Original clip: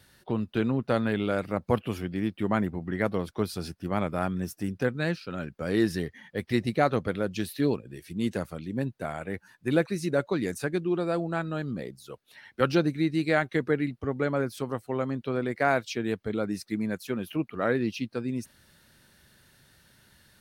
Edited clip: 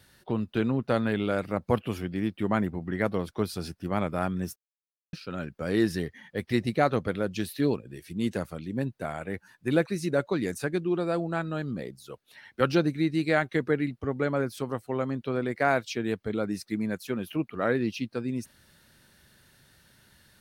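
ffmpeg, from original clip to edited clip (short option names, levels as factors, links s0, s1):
-filter_complex "[0:a]asplit=3[s0][s1][s2];[s0]atrim=end=4.56,asetpts=PTS-STARTPTS,afade=t=out:st=4.556:d=0.004:c=hsin[s3];[s1]atrim=start=4.56:end=5.13,asetpts=PTS-STARTPTS,volume=0[s4];[s2]atrim=start=5.13,asetpts=PTS-STARTPTS,afade=t=in:d=0.004:c=hsin[s5];[s3][s4][s5]concat=n=3:v=0:a=1"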